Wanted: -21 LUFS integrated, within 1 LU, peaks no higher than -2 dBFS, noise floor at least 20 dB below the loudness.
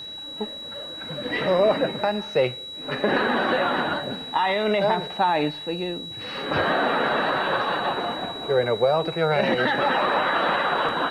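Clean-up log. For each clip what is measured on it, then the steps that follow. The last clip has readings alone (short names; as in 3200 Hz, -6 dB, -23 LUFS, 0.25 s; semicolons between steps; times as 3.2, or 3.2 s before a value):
ticks 46/s; steady tone 3900 Hz; tone level -34 dBFS; loudness -23.5 LUFS; peak -9.5 dBFS; loudness target -21.0 LUFS
-> de-click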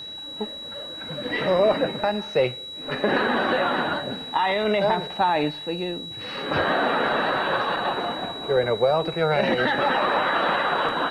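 ticks 0/s; steady tone 3900 Hz; tone level -34 dBFS
-> notch 3900 Hz, Q 30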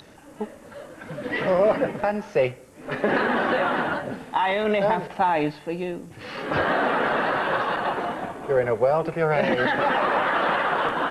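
steady tone none; loudness -23.5 LUFS; peak -10.0 dBFS; loudness target -21.0 LUFS
-> gain +2.5 dB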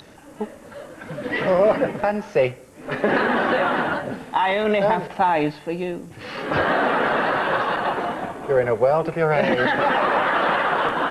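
loudness -21.0 LUFS; peak -7.5 dBFS; noise floor -44 dBFS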